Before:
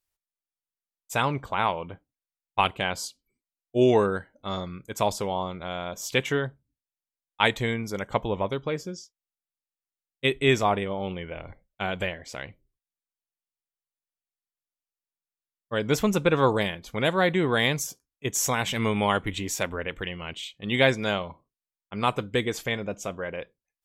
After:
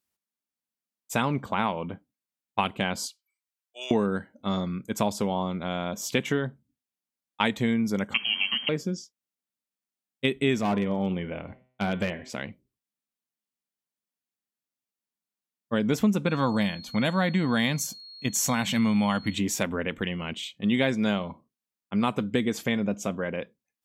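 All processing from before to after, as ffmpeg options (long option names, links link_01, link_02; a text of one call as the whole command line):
ffmpeg -i in.wav -filter_complex "[0:a]asettb=1/sr,asplit=3[link_01][link_02][link_03];[link_01]atrim=end=3.064[link_04];[link_02]atrim=start=3.06:end=3.91,asetpts=PTS-STARTPTS,afade=type=in:duration=0.004:curve=qsin,afade=type=out:start_time=0.846:duration=0.004:curve=qsin,highpass=frequency=1000:width=0.5412,highpass=frequency=1000:width=1.3066,asoftclip=type=hard:threshold=-27.5dB[link_05];[link_03]atrim=start=3.906[link_06];[link_04][link_05]acrossfade=duration=0.004:curve1=hsin:curve2=qsin[link_07];[link_07][link_06]acrossfade=duration=0.004:curve1=qsin:curve2=hsin,asettb=1/sr,asplit=3[link_08][link_09][link_10];[link_08]atrim=end=8.144[link_11];[link_09]atrim=start=8.14:end=8.69,asetpts=PTS-STARTPTS,afade=type=in:duration=0.004:curve=qsin,afade=type=out:start_time=0.546:duration=0.004:curve=qsin,aeval=exprs='val(0)+0.5*0.0178*sgn(val(0))':channel_layout=same,lowpass=frequency=2800:width_type=q:width=0.5098,lowpass=frequency=2800:width_type=q:width=0.6013,lowpass=frequency=2800:width_type=q:width=0.9,lowpass=frequency=2800:width_type=q:width=2.563,afreqshift=-3300,equalizer=frequency=190:width=1.1:gain=6[link_12];[link_10]atrim=start=8.686[link_13];[link_11][link_12]acrossfade=duration=0.004:curve1=hsin:curve2=qsin[link_14];[link_14][link_13]acrossfade=duration=0.004:curve1=qsin:curve2=hsin,asettb=1/sr,asplit=3[link_15][link_16][link_17];[link_15]atrim=end=10.614[link_18];[link_16]atrim=start=10.61:end=12.3,asetpts=PTS-STARTPTS,afade=type=in:duration=0.004:curve=qsin,afade=type=out:start_time=1.686:duration=0.004:curve=qsin,lowpass=frequency=3900:poles=1,bandreject=frequency=127.3:width_type=h:width=4,bandreject=frequency=254.6:width_type=h:width=4,bandreject=frequency=381.9:width_type=h:width=4,bandreject=frequency=509.2:width_type=h:width=4,bandreject=frequency=636.5:width_type=h:width=4,bandreject=frequency=763.8:width_type=h:width=4,bandreject=frequency=891.1:width_type=h:width=4,bandreject=frequency=1018.4:width_type=h:width=4,bandreject=frequency=1145.7:width_type=h:width=4,bandreject=frequency=1273:width_type=h:width=4,bandreject=frequency=1400.3:width_type=h:width=4,bandreject=frequency=1527.6:width_type=h:width=4,bandreject=frequency=1654.9:width_type=h:width=4,bandreject=frequency=1782.2:width_type=h:width=4,bandreject=frequency=1909.5:width_type=h:width=4,bandreject=frequency=2036.8:width_type=h:width=4,bandreject=frequency=2164.1:width_type=h:width=4,bandreject=frequency=2291.4:width_type=h:width=4,bandreject=frequency=2418.7:width_type=h:width=4,bandreject=frequency=2546:width_type=h:width=4,bandreject=frequency=2673.3:width_type=h:width=4,bandreject=frequency=2800.6:width_type=h:width=4,bandreject=frequency=2927.9:width_type=h:width=4,bandreject=frequency=3055.2:width_type=h:width=4,bandreject=frequency=3182.5:width_type=h:width=4,bandreject=frequency=3309.8:width_type=h:width=4,bandreject=frequency=3437.1:width_type=h:width=4,bandreject=frequency=3564.4:width_type=h:width=4,bandreject=frequency=3691.7:width_type=h:width=4,bandreject=frequency=3819:width_type=h:width=4,bandreject=frequency=3946.3:width_type=h:width=4,bandreject=frequency=4073.6:width_type=h:width=4,bandreject=frequency=4200.9:width_type=h:width=4,bandreject=frequency=4328.2:width_type=h:width=4,bandreject=frequency=4455.5:width_type=h:width=4,bandreject=frequency=4582.8:width_type=h:width=4,bandreject=frequency=4710.1:width_type=h:width=4,asoftclip=type=hard:threshold=-21.5dB[link_19];[link_17]atrim=start=12.296[link_20];[link_18][link_19]acrossfade=duration=0.004:curve1=hsin:curve2=qsin[link_21];[link_21][link_20]acrossfade=duration=0.004:curve1=qsin:curve2=hsin,asettb=1/sr,asplit=3[link_22][link_23][link_24];[link_22]atrim=end=16.264[link_25];[link_23]atrim=start=16.26:end=19.34,asetpts=PTS-STARTPTS,afade=type=in:duration=0.004:curve=qsin,afade=type=out:start_time=3.076:duration=0.004:curve=qsin,equalizer=frequency=400:width_type=o:width=0.4:gain=-13.5,aeval=exprs='val(0)+0.00631*sin(2*PI*4300*n/s)':channel_layout=same[link_26];[link_24]atrim=start=19.336[link_27];[link_25][link_26]acrossfade=duration=0.004:curve1=hsin:curve2=qsin[link_28];[link_28][link_27]acrossfade=duration=0.004:curve1=qsin:curve2=hsin,highpass=86,equalizer=frequency=220:width=2:gain=12,acompressor=threshold=-23dB:ratio=3,volume=1dB" out.wav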